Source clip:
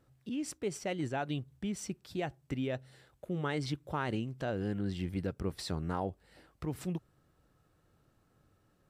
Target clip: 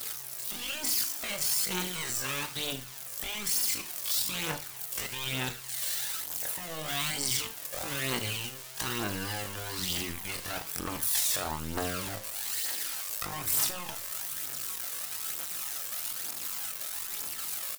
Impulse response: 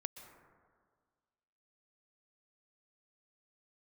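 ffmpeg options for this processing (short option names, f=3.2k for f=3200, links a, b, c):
-af "aeval=exprs='val(0)+0.5*0.00596*sgn(val(0))':c=same,equalizer=f=910:w=0.98:g=9.5,crystalizer=i=10:c=0,highshelf=f=2.9k:g=4,acrusher=bits=4:mix=0:aa=0.5,afftfilt=real='re*lt(hypot(re,im),0.158)':imag='im*lt(hypot(re,im),0.158)':win_size=1024:overlap=0.75,flanger=delay=2.1:depth=8.8:regen=83:speed=0.23:shape=triangular,atempo=0.5,aphaser=in_gain=1:out_gain=1:delay=1.9:decay=0.44:speed=1.1:type=triangular,aecho=1:1:38|78:0.266|0.133"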